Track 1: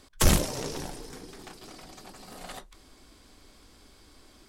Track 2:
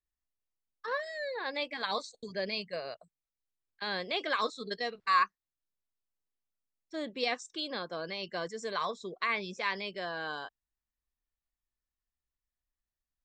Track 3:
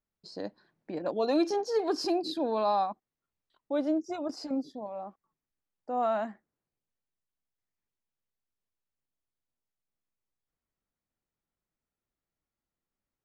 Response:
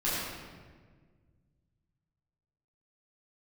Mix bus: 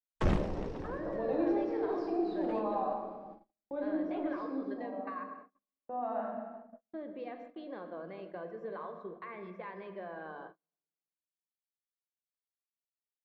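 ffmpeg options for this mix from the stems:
-filter_complex "[0:a]agate=range=-33dB:threshold=-49dB:ratio=3:detection=peak,volume=-9.5dB,asplit=2[link_01][link_02];[link_02]volume=-19.5dB[link_03];[1:a]lowpass=frequency=1300:poles=1,alimiter=level_in=2dB:limit=-24dB:level=0:latency=1:release=154,volume=-2dB,volume=-3dB,asplit=2[link_04][link_05];[link_05]volume=-20.5dB[link_06];[2:a]volume=-8dB,asplit=2[link_07][link_08];[link_08]volume=-12.5dB[link_09];[link_04][link_07]amix=inputs=2:normalize=0,highpass=frequency=210:poles=1,acompressor=threshold=-49dB:ratio=2,volume=0dB[link_10];[3:a]atrim=start_sample=2205[link_11];[link_03][link_06][link_09]amix=inputs=3:normalize=0[link_12];[link_12][link_11]afir=irnorm=-1:irlink=0[link_13];[link_01][link_10][link_13]amix=inputs=3:normalize=0,agate=range=-40dB:threshold=-52dB:ratio=16:detection=peak,lowpass=2000,equalizer=frequency=380:width=0.51:gain=5"

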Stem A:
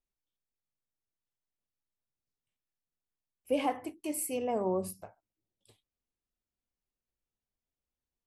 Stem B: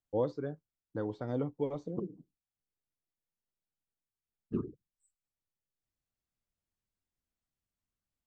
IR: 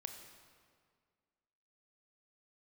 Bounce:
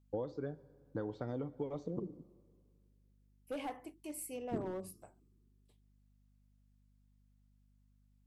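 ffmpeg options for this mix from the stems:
-filter_complex "[0:a]agate=range=-33dB:threshold=-60dB:ratio=3:detection=peak,volume=26dB,asoftclip=hard,volume=-26dB,volume=-9.5dB[link_01];[1:a]acompressor=threshold=-36dB:ratio=12,aeval=exprs='val(0)+0.000355*(sin(2*PI*50*n/s)+sin(2*PI*2*50*n/s)/2+sin(2*PI*3*50*n/s)/3+sin(2*PI*4*50*n/s)/4+sin(2*PI*5*50*n/s)/5)':channel_layout=same,volume=-1dB,asplit=2[link_02][link_03];[link_03]volume=-7dB[link_04];[2:a]atrim=start_sample=2205[link_05];[link_04][link_05]afir=irnorm=-1:irlink=0[link_06];[link_01][link_02][link_06]amix=inputs=3:normalize=0"

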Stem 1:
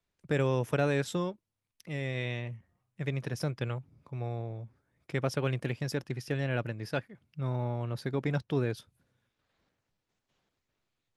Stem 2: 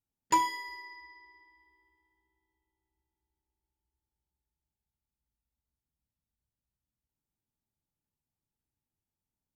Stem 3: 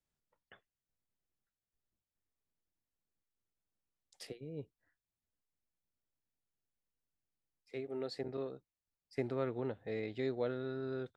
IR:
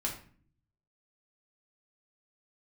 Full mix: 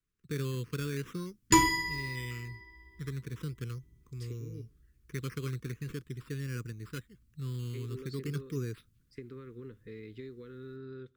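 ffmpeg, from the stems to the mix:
-filter_complex "[0:a]acrusher=samples=9:mix=1:aa=0.000001:lfo=1:lforange=5.4:lforate=0.42,volume=-8.5dB[link_01];[1:a]bass=frequency=250:gain=11,treble=frequency=4000:gain=3,adelay=1200,volume=2dB,asplit=2[link_02][link_03];[link_03]volume=-3dB[link_04];[2:a]acompressor=threshold=-39dB:ratio=6,volume=-4dB,asplit=2[link_05][link_06];[link_06]volume=-23dB[link_07];[3:a]atrim=start_sample=2205[link_08];[link_04][link_07]amix=inputs=2:normalize=0[link_09];[link_09][link_08]afir=irnorm=-1:irlink=0[link_10];[link_01][link_02][link_05][link_10]amix=inputs=4:normalize=0,asuperstop=centerf=710:order=8:qfactor=1.2,lowshelf=frequency=200:gain=6.5"

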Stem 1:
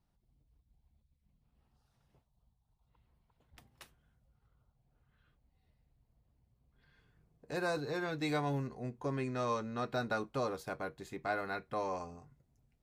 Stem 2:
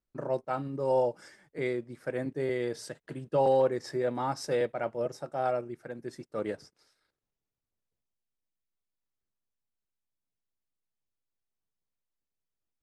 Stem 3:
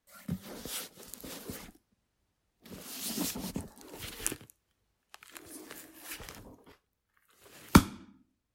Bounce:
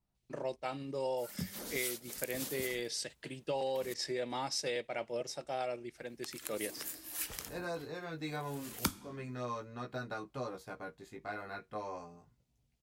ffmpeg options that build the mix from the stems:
ffmpeg -i stem1.wav -i stem2.wav -i stem3.wav -filter_complex "[0:a]flanger=delay=15.5:depth=3.4:speed=0.3,volume=-2dB[link_01];[1:a]highpass=frequency=190:poles=1,aemphasis=mode=reproduction:type=75kf,aexciter=amount=5.8:drive=7.5:freq=2100,adelay=150,volume=-3.5dB[link_02];[2:a]highshelf=frequency=4500:gain=11.5,adelay=1100,volume=-2dB,asplit=3[link_03][link_04][link_05];[link_03]atrim=end=3.94,asetpts=PTS-STARTPTS,afade=type=out:start_time=3.936:duration=0.004:curve=hsin[link_06];[link_04]atrim=start=3.94:end=5.95,asetpts=PTS-STARTPTS,volume=0[link_07];[link_05]atrim=start=5.95,asetpts=PTS-STARTPTS,afade=type=in:duration=0.004:curve=hsin[link_08];[link_06][link_07][link_08]concat=n=3:v=0:a=1[link_09];[link_01][link_02][link_09]amix=inputs=3:normalize=0,acompressor=threshold=-33dB:ratio=4" out.wav

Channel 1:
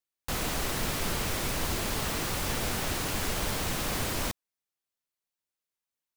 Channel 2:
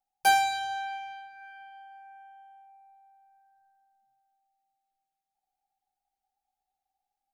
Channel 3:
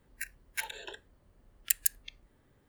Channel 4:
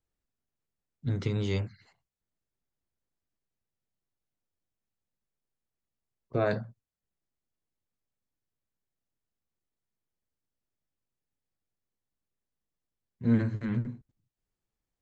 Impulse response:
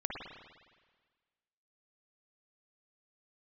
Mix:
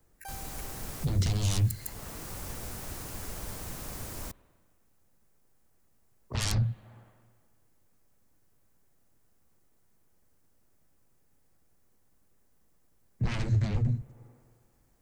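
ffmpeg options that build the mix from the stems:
-filter_complex "[0:a]volume=-6.5dB,asplit=2[link_01][link_02];[link_02]volume=-22.5dB[link_03];[1:a]volume=-16.5dB[link_04];[2:a]volume=-11dB[link_05];[3:a]aeval=exprs='0.188*sin(PI/2*7.94*val(0)/0.188)':channel_layout=same,volume=-2.5dB,asplit=3[link_06][link_07][link_08];[link_07]volume=-23.5dB[link_09];[link_08]apad=whole_len=271722[link_10];[link_01][link_10]sidechaincompress=threshold=-29dB:ratio=8:attack=35:release=805[link_11];[4:a]atrim=start_sample=2205[link_12];[link_03][link_09]amix=inputs=2:normalize=0[link_13];[link_13][link_12]afir=irnorm=-1:irlink=0[link_14];[link_11][link_04][link_05][link_06][link_14]amix=inputs=5:normalize=0,equalizer=frequency=3400:width_type=o:width=1.5:gain=-8.5,acrossover=split=140|3000[link_15][link_16][link_17];[link_16]acompressor=threshold=-44dB:ratio=5[link_18];[link_15][link_18][link_17]amix=inputs=3:normalize=0"

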